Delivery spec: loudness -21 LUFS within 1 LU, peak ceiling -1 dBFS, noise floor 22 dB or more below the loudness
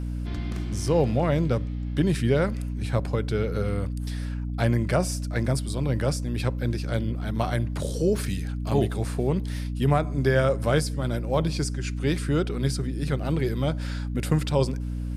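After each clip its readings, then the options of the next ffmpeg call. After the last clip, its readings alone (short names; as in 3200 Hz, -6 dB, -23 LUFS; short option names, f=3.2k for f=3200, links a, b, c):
hum 60 Hz; harmonics up to 300 Hz; hum level -27 dBFS; loudness -26.5 LUFS; peak -8.0 dBFS; loudness target -21.0 LUFS
-> -af "bandreject=f=60:t=h:w=4,bandreject=f=120:t=h:w=4,bandreject=f=180:t=h:w=4,bandreject=f=240:t=h:w=4,bandreject=f=300:t=h:w=4"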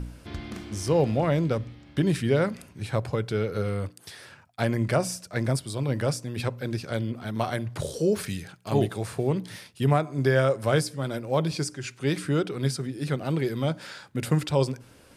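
hum none; loudness -27.5 LUFS; peak -9.0 dBFS; loudness target -21.0 LUFS
-> -af "volume=6.5dB"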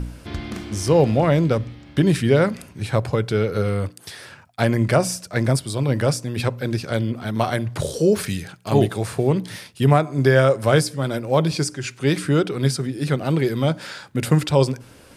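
loudness -21.0 LUFS; peak -2.5 dBFS; noise floor -47 dBFS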